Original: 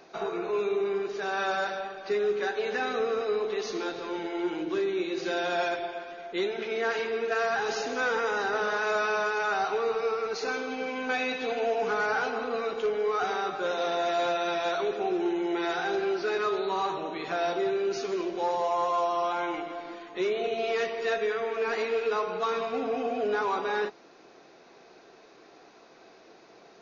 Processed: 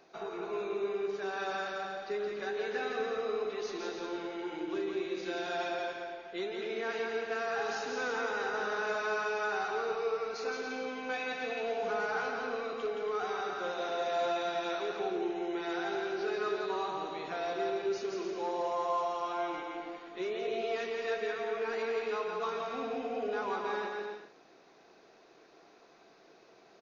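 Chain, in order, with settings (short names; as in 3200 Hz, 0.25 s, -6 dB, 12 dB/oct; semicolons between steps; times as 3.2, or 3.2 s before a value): bouncing-ball echo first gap 0.17 s, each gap 0.65×, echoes 5; gain -8 dB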